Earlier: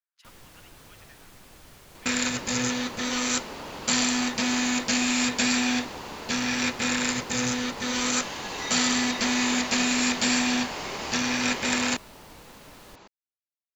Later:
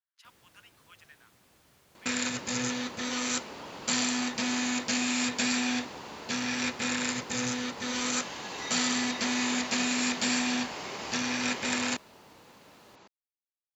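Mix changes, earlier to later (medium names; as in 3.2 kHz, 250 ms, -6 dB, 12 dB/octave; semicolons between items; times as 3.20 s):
first sound -11.5 dB; second sound -4.5 dB; master: add high-pass 79 Hz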